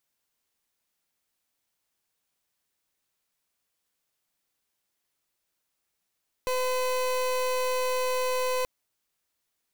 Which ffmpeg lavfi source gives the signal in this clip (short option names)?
-f lavfi -i "aevalsrc='0.0447*(2*lt(mod(508*t,1),0.3)-1)':d=2.18:s=44100"